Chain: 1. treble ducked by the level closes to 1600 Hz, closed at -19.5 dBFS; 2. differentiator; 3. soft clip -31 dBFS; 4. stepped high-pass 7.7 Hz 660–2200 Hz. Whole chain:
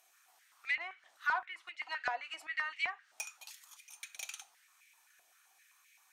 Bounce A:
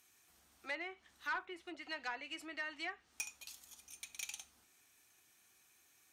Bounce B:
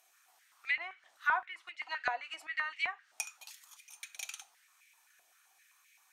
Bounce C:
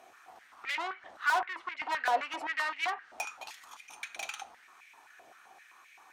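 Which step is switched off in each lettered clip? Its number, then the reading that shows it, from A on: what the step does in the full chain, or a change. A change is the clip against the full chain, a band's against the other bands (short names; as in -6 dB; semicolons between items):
4, 1 kHz band -6.0 dB; 3, distortion -14 dB; 2, 500 Hz band +7.0 dB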